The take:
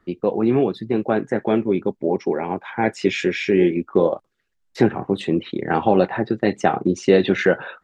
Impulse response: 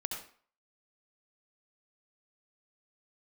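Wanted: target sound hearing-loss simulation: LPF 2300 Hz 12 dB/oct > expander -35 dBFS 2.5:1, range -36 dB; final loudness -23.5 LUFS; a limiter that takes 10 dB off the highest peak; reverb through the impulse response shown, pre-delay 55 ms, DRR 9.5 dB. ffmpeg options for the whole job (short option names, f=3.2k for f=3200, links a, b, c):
-filter_complex "[0:a]alimiter=limit=-12dB:level=0:latency=1,asplit=2[a][b];[1:a]atrim=start_sample=2205,adelay=55[c];[b][c]afir=irnorm=-1:irlink=0,volume=-11dB[d];[a][d]amix=inputs=2:normalize=0,lowpass=2.3k,agate=range=-36dB:threshold=-35dB:ratio=2.5,volume=0.5dB"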